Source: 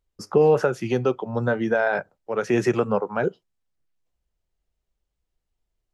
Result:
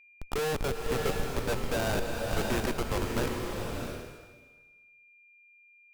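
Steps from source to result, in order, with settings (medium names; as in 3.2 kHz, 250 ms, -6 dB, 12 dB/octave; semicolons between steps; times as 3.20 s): high-pass 1.5 kHz 6 dB/octave; Schmitt trigger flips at -28.5 dBFS; vibrato 4.1 Hz 7 cents; whistle 2.4 kHz -61 dBFS; swelling reverb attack 660 ms, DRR 1 dB; trim +5.5 dB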